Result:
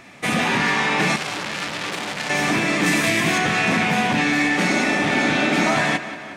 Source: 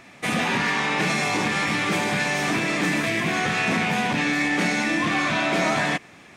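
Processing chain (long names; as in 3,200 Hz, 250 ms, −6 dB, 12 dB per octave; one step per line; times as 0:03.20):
0:02.86–0:03.38: high-shelf EQ 4,500 Hz +8.5 dB
0:04.69–0:05.64: healed spectral selection 210–1,300 Hz before
tape delay 182 ms, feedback 68%, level −12 dB, low-pass 5,800 Hz
0:01.16–0:02.30: saturating transformer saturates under 3,900 Hz
level +3 dB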